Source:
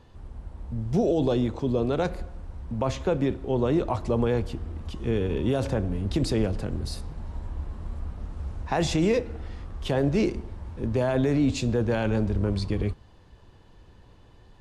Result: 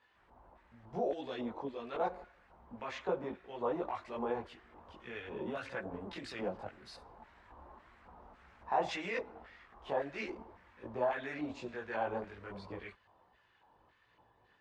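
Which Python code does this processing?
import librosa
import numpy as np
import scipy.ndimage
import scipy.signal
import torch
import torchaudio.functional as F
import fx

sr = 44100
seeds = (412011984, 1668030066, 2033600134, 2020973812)

y = fx.filter_lfo_bandpass(x, sr, shape='square', hz=1.8, low_hz=880.0, high_hz=1900.0, q=1.9)
y = fx.chorus_voices(y, sr, voices=6, hz=1.4, base_ms=19, depth_ms=3.0, mix_pct=55)
y = y * librosa.db_to_amplitude(2.0)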